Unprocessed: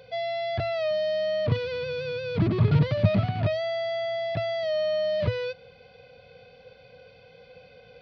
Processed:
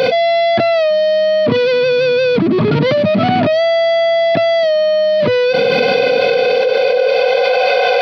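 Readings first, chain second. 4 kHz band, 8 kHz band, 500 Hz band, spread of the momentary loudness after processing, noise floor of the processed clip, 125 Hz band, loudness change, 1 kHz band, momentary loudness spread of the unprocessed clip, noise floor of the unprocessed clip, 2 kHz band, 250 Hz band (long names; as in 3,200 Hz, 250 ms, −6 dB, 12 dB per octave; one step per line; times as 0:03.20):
+17.0 dB, can't be measured, +17.0 dB, 1 LU, −14 dBFS, +2.5 dB, +13.5 dB, +18.5 dB, 9 LU, −53 dBFS, +18.5 dB, +13.0 dB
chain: high-pass filter sweep 250 Hz → 670 Hz, 0:05.84–0:07.59
low-shelf EQ 85 Hz −8.5 dB
envelope flattener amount 100%
level +6.5 dB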